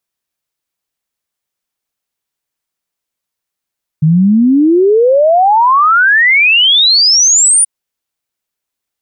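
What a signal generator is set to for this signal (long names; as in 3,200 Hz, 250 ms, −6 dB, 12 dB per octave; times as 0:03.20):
exponential sine sweep 150 Hz → 9,700 Hz 3.63 s −5 dBFS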